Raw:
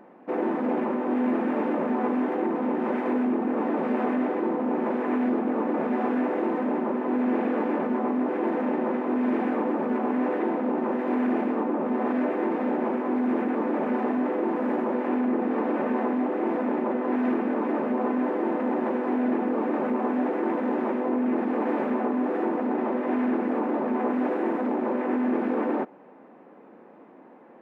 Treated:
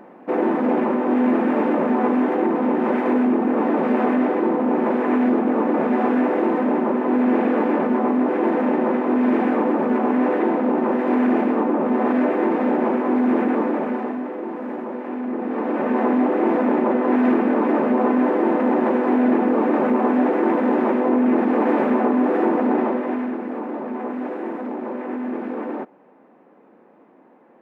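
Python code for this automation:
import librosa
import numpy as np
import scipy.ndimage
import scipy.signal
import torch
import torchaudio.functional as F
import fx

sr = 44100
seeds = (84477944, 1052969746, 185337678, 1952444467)

y = fx.gain(x, sr, db=fx.line((13.56, 6.5), (14.29, -3.0), (15.14, -3.0), (16.12, 7.5), (22.77, 7.5), (23.35, -2.0)))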